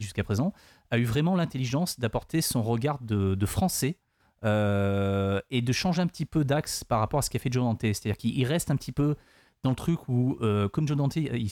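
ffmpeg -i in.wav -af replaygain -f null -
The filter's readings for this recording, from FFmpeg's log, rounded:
track_gain = +9.6 dB
track_peak = 0.135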